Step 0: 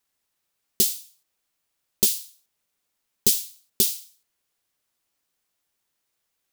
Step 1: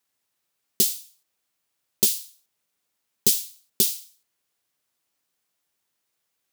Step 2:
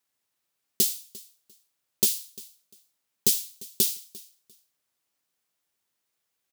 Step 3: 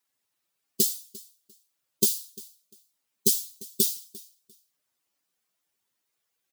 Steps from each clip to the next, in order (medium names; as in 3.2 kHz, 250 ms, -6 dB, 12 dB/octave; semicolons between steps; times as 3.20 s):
high-pass 77 Hz
feedback delay 348 ms, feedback 22%, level -21 dB; trim -2.5 dB
spectral contrast enhancement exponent 1.7